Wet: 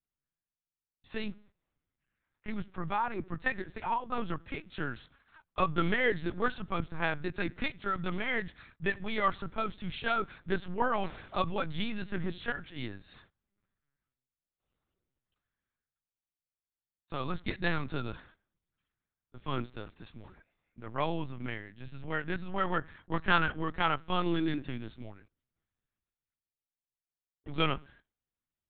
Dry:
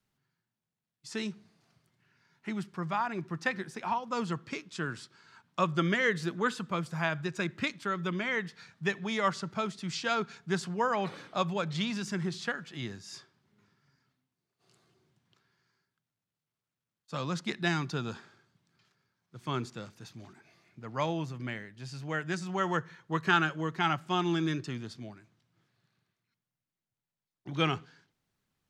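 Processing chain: gate -57 dBFS, range -15 dB; LPC vocoder at 8 kHz pitch kept

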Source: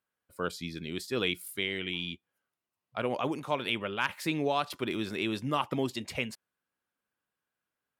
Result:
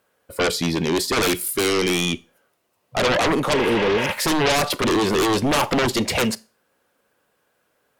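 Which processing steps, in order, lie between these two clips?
peaking EQ 520 Hz +9.5 dB 1.1 oct; spectral replace 3.56–4.06 s, 510–4900 Hz after; in parallel at -7 dB: sine folder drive 20 dB, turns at -10.5 dBFS; on the sum: Schroeder reverb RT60 0.32 s, combs from 28 ms, DRR 20 dB

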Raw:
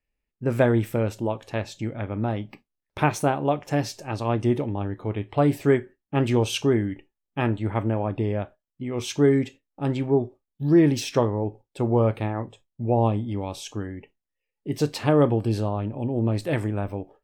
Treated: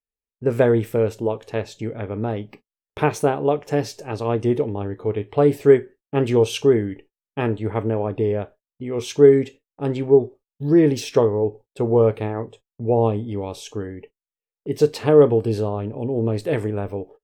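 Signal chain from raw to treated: gate -47 dBFS, range -17 dB; peaking EQ 440 Hz +11.5 dB 0.34 oct

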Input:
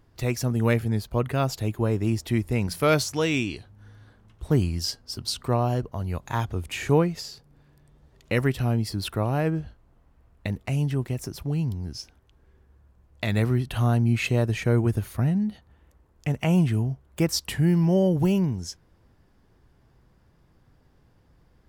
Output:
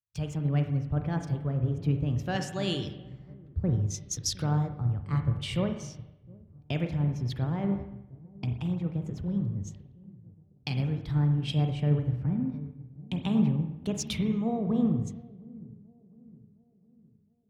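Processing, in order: gate -53 dBFS, range -17 dB; low-pass 4.6 kHz 12 dB/octave; peaking EQ 78 Hz +14 dB 2 oct; compression 2.5:1, threshold -34 dBFS, peak gain reduction 16 dB; wide varispeed 1.24×; feedback echo behind a low-pass 712 ms, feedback 65%, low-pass 430 Hz, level -11 dB; reverberation RT60 1.4 s, pre-delay 40 ms, DRR 5 dB; three bands expanded up and down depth 100%

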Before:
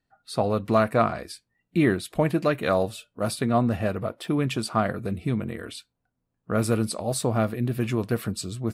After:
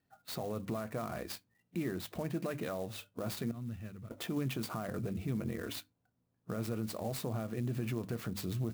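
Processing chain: 3.51–4.11 s: amplifier tone stack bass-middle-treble 6-0-2; compression 3:1, threshold -30 dBFS, peak gain reduction 11.5 dB; peak limiter -28.5 dBFS, peak gain reduction 10.5 dB; high-pass 75 Hz; bass shelf 460 Hz +4.5 dB; hum notches 50/100/150/200/250/300 Hz; sampling jitter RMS 0.03 ms; trim -2 dB

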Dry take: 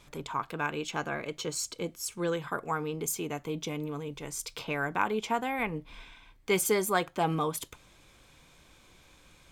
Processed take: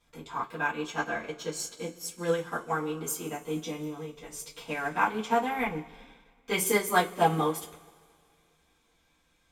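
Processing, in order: two-slope reverb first 0.21 s, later 2.9 s, from -22 dB, DRR -6.5 dB; upward expansion 1.5:1, over -46 dBFS; trim -2.5 dB

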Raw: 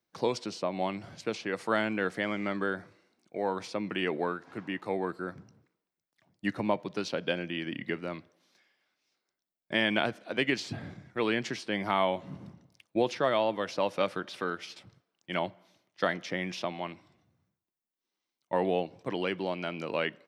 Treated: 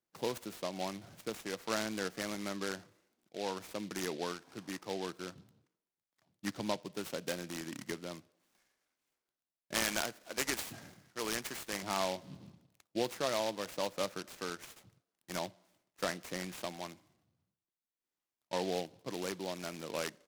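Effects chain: 9.74–11.83 s: tilt EQ +2.5 dB/octave; delay time shaken by noise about 3.4 kHz, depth 0.08 ms; trim -7 dB

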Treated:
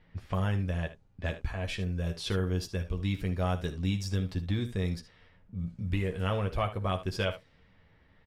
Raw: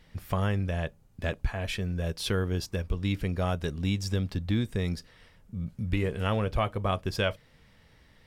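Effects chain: early reflections 11 ms -6.5 dB, 59 ms -15.5 dB, 76 ms -13.5 dB; level-controlled noise filter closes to 2.4 kHz, open at -24 dBFS; trim -4 dB

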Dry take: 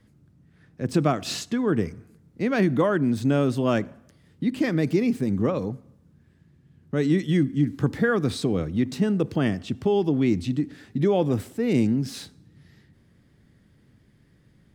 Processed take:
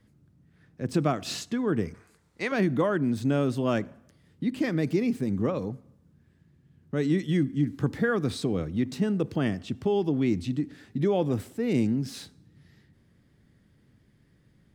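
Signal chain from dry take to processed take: 1.94–2.52 s: graphic EQ 125/250/1000/2000/4000/8000 Hz -10/-8/+9/+6/+7/+9 dB; trim -3.5 dB

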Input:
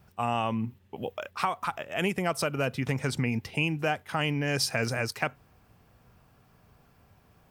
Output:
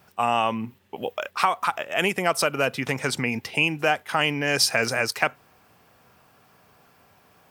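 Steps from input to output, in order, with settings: high-pass 460 Hz 6 dB/octave; trim +8 dB

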